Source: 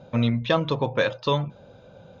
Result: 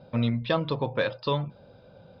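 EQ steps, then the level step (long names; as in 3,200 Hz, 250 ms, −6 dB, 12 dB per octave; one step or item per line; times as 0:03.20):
low-pass with resonance 4,900 Hz, resonance Q 7.7
high-frequency loss of the air 300 metres
−3.0 dB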